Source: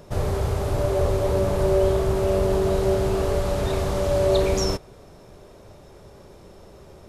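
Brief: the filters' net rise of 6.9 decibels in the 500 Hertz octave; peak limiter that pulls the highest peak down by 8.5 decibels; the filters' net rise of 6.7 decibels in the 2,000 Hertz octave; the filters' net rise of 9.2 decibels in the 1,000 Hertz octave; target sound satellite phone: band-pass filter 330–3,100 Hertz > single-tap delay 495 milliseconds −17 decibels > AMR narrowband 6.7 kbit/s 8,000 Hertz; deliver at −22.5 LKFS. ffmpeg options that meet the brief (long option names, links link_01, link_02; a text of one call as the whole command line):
ffmpeg -i in.wav -af "equalizer=frequency=500:width_type=o:gain=7.5,equalizer=frequency=1000:width_type=o:gain=8,equalizer=frequency=2000:width_type=o:gain=6,alimiter=limit=-11dB:level=0:latency=1,highpass=330,lowpass=3100,aecho=1:1:495:0.141,volume=-0.5dB" -ar 8000 -c:a libopencore_amrnb -b:a 6700 out.amr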